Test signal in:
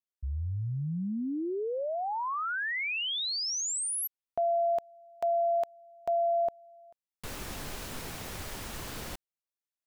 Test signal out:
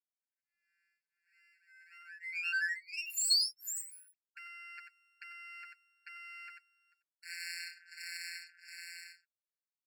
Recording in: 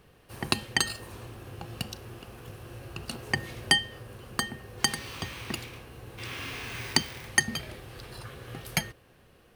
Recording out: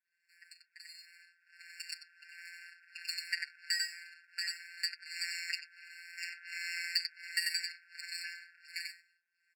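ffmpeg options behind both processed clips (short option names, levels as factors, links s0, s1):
-filter_complex "[0:a]afftfilt=real='hypot(re,im)*cos(PI*b)':imag='0':win_size=1024:overlap=0.75,aecho=1:1:91:0.316,acrossover=split=750[s0][s1];[s0]aeval=exprs='val(0)*(1-1/2+1/2*cos(2*PI*1.4*n/s))':c=same[s2];[s1]aeval=exprs='val(0)*(1-1/2-1/2*cos(2*PI*1.4*n/s))':c=same[s3];[s2][s3]amix=inputs=2:normalize=0,acompressor=threshold=0.00562:ratio=4:attack=0.45:release=33:knee=6:detection=peak,highpass=f=130:w=0.5412,highpass=f=130:w=1.3066,equalizer=f=150:t=q:w=4:g=9,equalizer=f=840:t=q:w=4:g=-8,equalizer=f=2600:t=q:w=4:g=-7,equalizer=f=3700:t=q:w=4:g=7,lowpass=f=7000:w=0.5412,lowpass=f=7000:w=1.3066,aeval=exprs='max(val(0),0)':c=same,dynaudnorm=f=460:g=7:m=5.31,aeval=exprs='0.133*(cos(1*acos(clip(val(0)/0.133,-1,1)))-cos(1*PI/2))+0.0422*(cos(6*acos(clip(val(0)/0.133,-1,1)))-cos(6*PI/2))':c=same,adynamicequalizer=threshold=0.00501:dfrequency=3800:dqfactor=1.5:tfrequency=3800:tqfactor=1.5:attack=5:release=100:ratio=0.375:range=2.5:mode=boostabove:tftype=bell,afftfilt=real='re*eq(mod(floor(b*sr/1024/1400),2),1)':imag='im*eq(mod(floor(b*sr/1024/1400),2),1)':win_size=1024:overlap=0.75"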